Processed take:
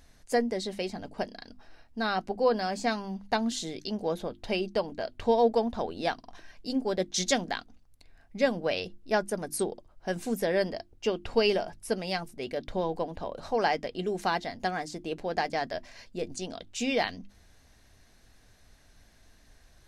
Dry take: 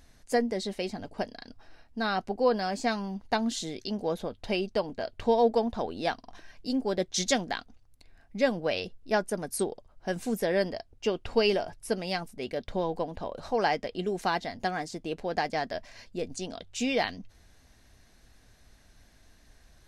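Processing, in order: hum notches 50/100/150/200/250/300/350 Hz

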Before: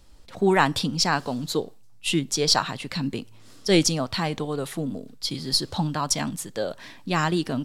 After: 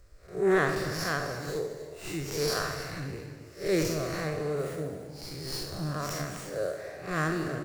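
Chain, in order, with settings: spectral blur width 149 ms; static phaser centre 880 Hz, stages 6; on a send: frequency-shifting echo 142 ms, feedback 61%, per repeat +74 Hz, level -17 dB; on the sum: gated-style reverb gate 380 ms flat, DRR 8 dB; sliding maximum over 3 samples; trim +1.5 dB

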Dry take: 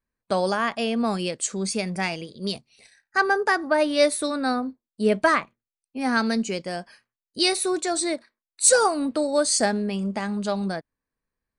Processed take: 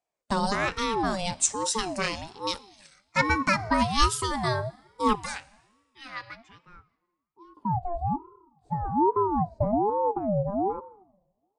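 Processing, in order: 5.15–7.57 s: pre-emphasis filter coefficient 0.97; low-pass sweep 7.3 kHz -> 280 Hz, 5.59–7.37 s; on a send at -20 dB: reverberation RT60 1.3 s, pre-delay 40 ms; on the sum: ring modulator with a swept carrier 530 Hz, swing 35%, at 1.2 Hz

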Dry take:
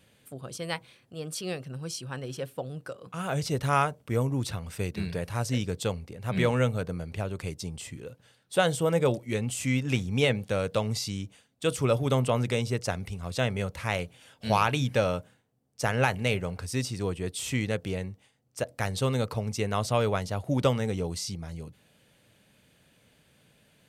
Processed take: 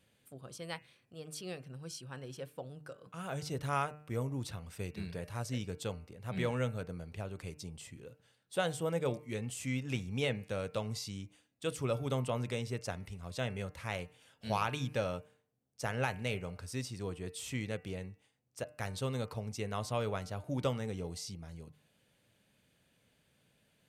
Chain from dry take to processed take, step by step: de-hum 150.7 Hz, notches 19; trim -9 dB

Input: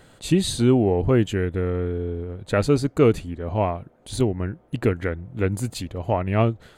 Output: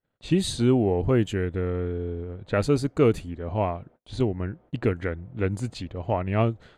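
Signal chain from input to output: level-controlled noise filter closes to 2.7 kHz, open at -15.5 dBFS; gate -48 dBFS, range -36 dB; trim -3 dB

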